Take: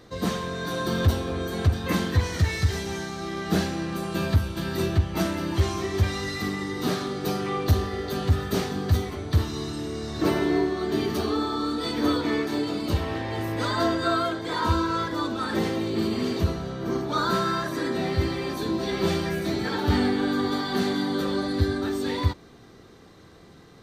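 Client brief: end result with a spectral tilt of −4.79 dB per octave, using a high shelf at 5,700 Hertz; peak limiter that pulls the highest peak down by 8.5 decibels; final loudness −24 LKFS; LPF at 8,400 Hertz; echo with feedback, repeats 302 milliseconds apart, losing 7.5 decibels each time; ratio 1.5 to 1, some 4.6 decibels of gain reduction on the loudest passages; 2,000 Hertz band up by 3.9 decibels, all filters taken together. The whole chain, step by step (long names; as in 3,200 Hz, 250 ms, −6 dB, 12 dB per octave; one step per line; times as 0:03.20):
low-pass filter 8,400 Hz
parametric band 2,000 Hz +4 dB
high-shelf EQ 5,700 Hz +8.5 dB
downward compressor 1.5 to 1, threshold −28 dBFS
brickwall limiter −23 dBFS
repeating echo 302 ms, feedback 42%, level −7.5 dB
level +7 dB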